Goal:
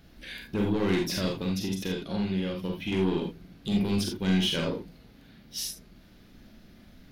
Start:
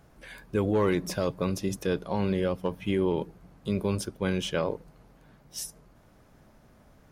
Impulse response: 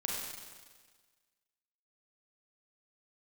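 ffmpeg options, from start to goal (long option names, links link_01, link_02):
-filter_complex "[0:a]equalizer=frequency=125:width_type=o:width=1:gain=-6,equalizer=frequency=250:width_type=o:width=1:gain=3,equalizer=frequency=500:width_type=o:width=1:gain=-7,equalizer=frequency=1000:width_type=o:width=1:gain=-12,equalizer=frequency=4000:width_type=o:width=1:gain=8,equalizer=frequency=8000:width_type=o:width=1:gain=-10,asettb=1/sr,asplit=3[link_01][link_02][link_03];[link_01]atrim=end=1.374[link_04];[link_02]atrim=start=1.37:end=2.92,asetpts=PTS-STARTPTS,afade=type=in:duration=0.004:curve=qsin,afade=type=out:start_time=1.546:duration=0.004:curve=qsin,acompressor=threshold=-32dB:ratio=6[link_05];[link_03]atrim=start=2.916[link_06];[link_04][link_05]acrossfade=duration=0.004:curve1=hsin:curve2=qsin[link_07];[link_07][link_06]acrossfade=duration=0.004:curve1=qsin:curve2=hsin,asoftclip=type=tanh:threshold=-28dB[link_08];[1:a]atrim=start_sample=2205,atrim=end_sample=3969[link_09];[link_08][link_09]afir=irnorm=-1:irlink=0,volume=5.5dB"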